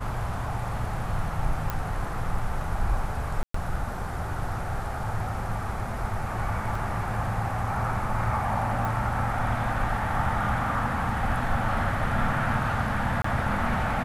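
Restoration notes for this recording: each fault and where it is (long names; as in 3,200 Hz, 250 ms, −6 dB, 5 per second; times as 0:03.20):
0:01.70: click −14 dBFS
0:03.43–0:03.54: drop-out 114 ms
0:06.75: drop-out 3.7 ms
0:08.85: click
0:13.22–0:13.24: drop-out 24 ms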